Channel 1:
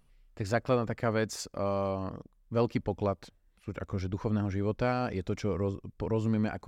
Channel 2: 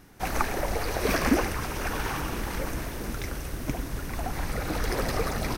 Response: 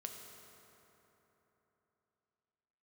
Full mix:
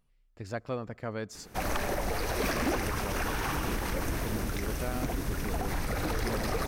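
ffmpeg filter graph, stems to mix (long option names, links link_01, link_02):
-filter_complex "[0:a]volume=-7.5dB,asplit=2[link_01][link_02];[link_02]volume=-21dB[link_03];[1:a]aeval=exprs='0.126*(abs(mod(val(0)/0.126+3,4)-2)-1)':channel_layout=same,adelay=1350,volume=1dB[link_04];[2:a]atrim=start_sample=2205[link_05];[link_03][link_05]afir=irnorm=-1:irlink=0[link_06];[link_01][link_04][link_06]amix=inputs=3:normalize=0,alimiter=limit=-22dB:level=0:latency=1:release=48"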